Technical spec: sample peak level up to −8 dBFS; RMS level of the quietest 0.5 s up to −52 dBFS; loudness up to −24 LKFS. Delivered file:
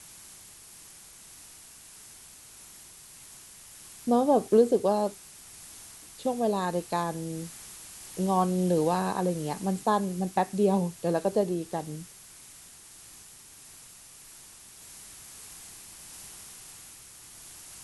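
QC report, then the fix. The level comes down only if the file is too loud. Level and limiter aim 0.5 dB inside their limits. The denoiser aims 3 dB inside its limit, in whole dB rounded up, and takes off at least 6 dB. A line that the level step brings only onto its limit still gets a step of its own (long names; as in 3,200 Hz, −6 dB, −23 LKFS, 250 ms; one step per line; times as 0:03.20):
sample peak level −9.5 dBFS: in spec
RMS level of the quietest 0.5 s −50 dBFS: out of spec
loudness −27.5 LKFS: in spec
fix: broadband denoise 6 dB, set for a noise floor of −50 dBFS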